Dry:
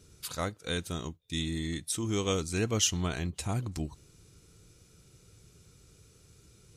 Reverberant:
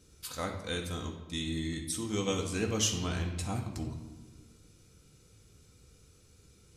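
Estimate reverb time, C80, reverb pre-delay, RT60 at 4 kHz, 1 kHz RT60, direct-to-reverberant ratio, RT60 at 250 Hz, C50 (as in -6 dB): 1.3 s, 8.5 dB, 4 ms, 0.95 s, 1.2 s, 2.0 dB, 1.8 s, 6.5 dB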